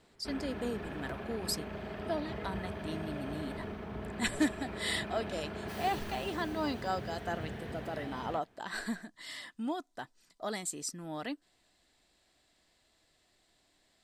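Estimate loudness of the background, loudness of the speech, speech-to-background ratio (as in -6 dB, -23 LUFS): -42.0 LUFS, -38.0 LUFS, 4.0 dB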